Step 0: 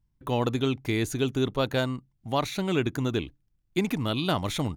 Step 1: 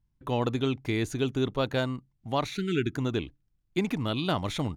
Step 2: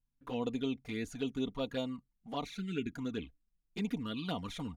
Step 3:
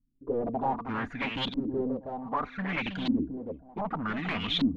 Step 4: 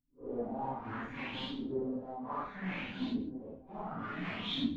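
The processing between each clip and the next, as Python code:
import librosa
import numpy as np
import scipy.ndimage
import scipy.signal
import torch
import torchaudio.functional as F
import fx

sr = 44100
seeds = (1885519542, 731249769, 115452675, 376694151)

y1 = fx.spec_erase(x, sr, start_s=2.56, length_s=0.39, low_hz=440.0, high_hz=1300.0)
y1 = fx.high_shelf(y1, sr, hz=10000.0, db=-12.0)
y1 = y1 * librosa.db_to_amplitude(-1.5)
y2 = y1 + 0.59 * np.pad(y1, (int(4.2 * sr / 1000.0), 0))[:len(y1)]
y2 = fx.env_flanger(y2, sr, rest_ms=8.1, full_db=-22.0)
y2 = y2 * librosa.db_to_amplitude(-8.0)
y3 = 10.0 ** (-35.5 / 20.0) * (np.abs((y2 / 10.0 ** (-35.5 / 20.0) + 3.0) % 4.0 - 2.0) - 1.0)
y3 = fx.echo_feedback(y3, sr, ms=319, feedback_pct=18, wet_db=-6.5)
y3 = fx.filter_lfo_lowpass(y3, sr, shape='saw_up', hz=0.65, low_hz=250.0, high_hz=3900.0, q=5.5)
y3 = y3 * librosa.db_to_amplitude(6.0)
y4 = fx.phase_scramble(y3, sr, seeds[0], window_ms=200)
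y4 = y4 + 10.0 ** (-18.5 / 20.0) * np.pad(y4, (int(134 * sr / 1000.0), 0))[:len(y4)]
y4 = y4 * librosa.db_to_amplitude(-7.5)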